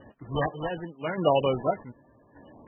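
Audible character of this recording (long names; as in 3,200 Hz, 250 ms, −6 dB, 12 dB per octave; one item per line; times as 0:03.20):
aliases and images of a low sample rate 3,500 Hz, jitter 0%
chopped level 0.85 Hz, depth 60%, duty 45%
MP3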